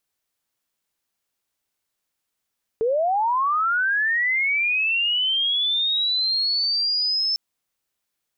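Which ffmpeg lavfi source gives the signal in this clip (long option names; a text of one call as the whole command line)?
ffmpeg -f lavfi -i "aevalsrc='pow(10,(-18-1.5*t/4.55)/20)*sin(2*PI*(430*t+4870*t*t/(2*4.55)))':duration=4.55:sample_rate=44100" out.wav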